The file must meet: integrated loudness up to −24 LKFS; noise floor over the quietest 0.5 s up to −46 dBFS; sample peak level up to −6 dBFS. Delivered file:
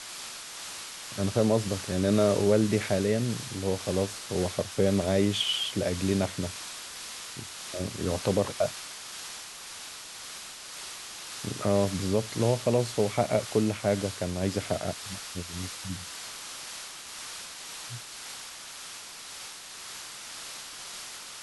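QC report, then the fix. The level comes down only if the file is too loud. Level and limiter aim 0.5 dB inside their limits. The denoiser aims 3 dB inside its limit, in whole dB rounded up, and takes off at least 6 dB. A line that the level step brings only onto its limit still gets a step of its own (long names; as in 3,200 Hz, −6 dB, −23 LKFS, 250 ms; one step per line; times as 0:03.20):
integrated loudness −30.5 LKFS: in spec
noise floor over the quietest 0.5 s −43 dBFS: out of spec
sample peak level −10.5 dBFS: in spec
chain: broadband denoise 6 dB, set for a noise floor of −43 dBFS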